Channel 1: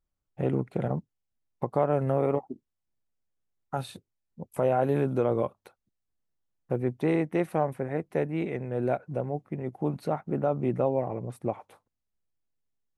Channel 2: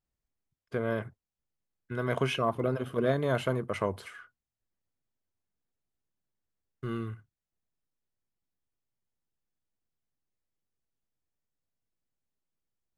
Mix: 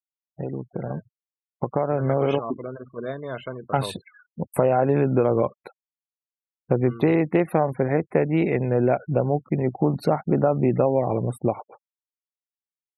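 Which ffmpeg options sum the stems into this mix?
ffmpeg -i stem1.wav -i stem2.wav -filter_complex "[0:a]acompressor=threshold=-27dB:ratio=4,volume=0.5dB[link_01];[1:a]lowshelf=frequency=160:gain=-6,volume=-13.5dB[link_02];[link_01][link_02]amix=inputs=2:normalize=0,dynaudnorm=framelen=690:gausssize=5:maxgain=11dB,afftfilt=real='re*gte(hypot(re,im),0.0112)':imag='im*gte(hypot(re,im),0.0112)':win_size=1024:overlap=0.75" out.wav

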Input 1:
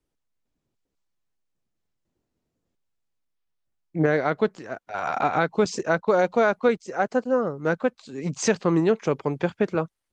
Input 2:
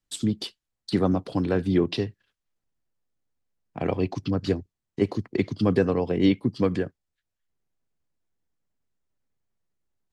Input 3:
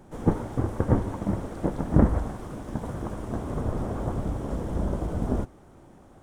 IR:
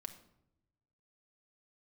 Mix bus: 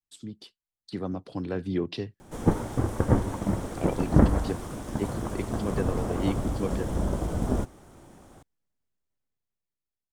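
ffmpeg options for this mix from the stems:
-filter_complex "[1:a]dynaudnorm=framelen=200:gausssize=11:maxgain=12.5dB,volume=-15dB[link_01];[2:a]highshelf=frequency=2600:gain=9,adelay=2200,volume=0dB[link_02];[link_01][link_02]amix=inputs=2:normalize=0"

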